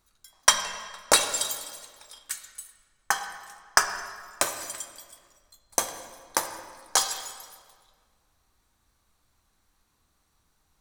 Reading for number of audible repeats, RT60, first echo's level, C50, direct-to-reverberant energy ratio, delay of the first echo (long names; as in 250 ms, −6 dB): no echo audible, 1.8 s, no echo audible, 8.0 dB, 6.0 dB, no echo audible